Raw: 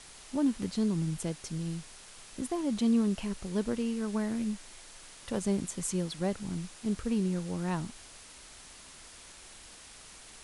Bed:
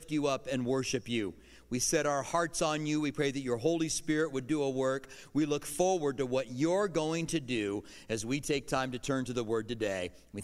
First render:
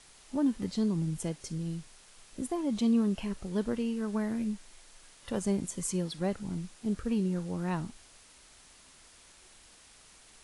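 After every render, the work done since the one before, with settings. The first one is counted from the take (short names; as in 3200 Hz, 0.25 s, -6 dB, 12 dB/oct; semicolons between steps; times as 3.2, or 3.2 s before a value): noise print and reduce 6 dB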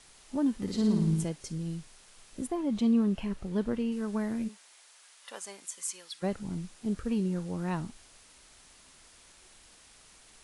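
0.62–1.24 flutter echo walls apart 9.6 m, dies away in 0.89 s; 2.47–3.92 tone controls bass +2 dB, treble -6 dB; 4.47–6.22 HPF 570 Hz -> 1500 Hz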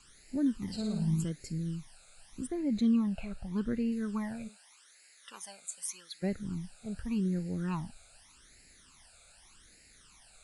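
phaser stages 12, 0.84 Hz, lowest notch 310–1100 Hz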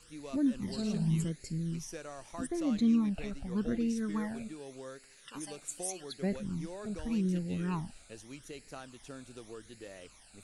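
add bed -15 dB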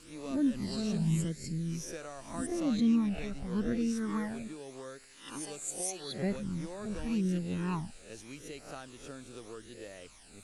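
spectral swells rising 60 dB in 0.45 s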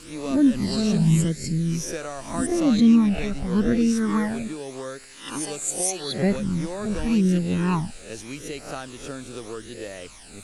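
gain +11 dB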